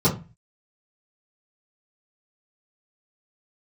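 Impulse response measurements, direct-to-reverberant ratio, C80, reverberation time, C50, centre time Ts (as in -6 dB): -11.0 dB, 17.5 dB, 0.30 s, 11.0 dB, 17 ms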